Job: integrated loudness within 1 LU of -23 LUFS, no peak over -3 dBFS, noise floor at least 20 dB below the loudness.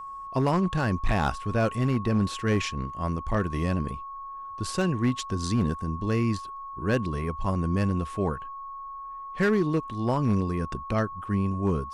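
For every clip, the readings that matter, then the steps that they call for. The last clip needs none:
clipped samples 0.8%; clipping level -17.0 dBFS; steady tone 1.1 kHz; tone level -36 dBFS; loudness -27.5 LUFS; peak level -17.0 dBFS; loudness target -23.0 LUFS
-> clip repair -17 dBFS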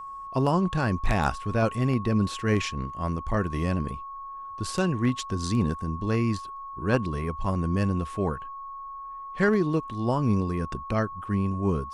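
clipped samples 0.0%; steady tone 1.1 kHz; tone level -36 dBFS
-> band-stop 1.1 kHz, Q 30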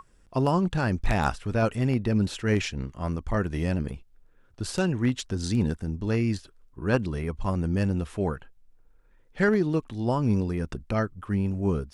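steady tone not found; loudness -27.5 LUFS; peak level -8.5 dBFS; loudness target -23.0 LUFS
-> trim +4.5 dB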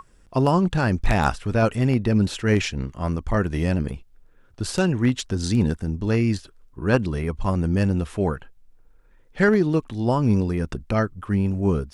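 loudness -23.0 LUFS; peak level -4.0 dBFS; noise floor -54 dBFS

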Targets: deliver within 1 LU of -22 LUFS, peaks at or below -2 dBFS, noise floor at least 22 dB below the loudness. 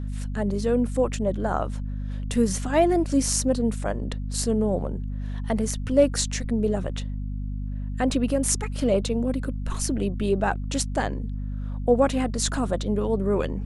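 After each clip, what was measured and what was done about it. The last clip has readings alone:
hum 50 Hz; highest harmonic 250 Hz; hum level -27 dBFS; loudness -25.5 LUFS; peak level -7.0 dBFS; loudness target -22.0 LUFS
-> hum notches 50/100/150/200/250 Hz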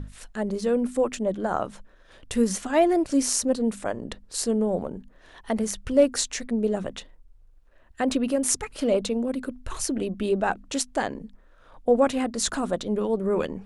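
hum not found; loudness -25.5 LUFS; peak level -7.5 dBFS; loudness target -22.0 LUFS
-> trim +3.5 dB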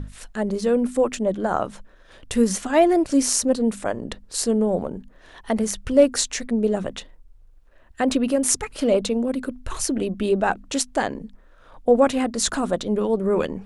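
loudness -22.0 LUFS; peak level -4.0 dBFS; noise floor -51 dBFS

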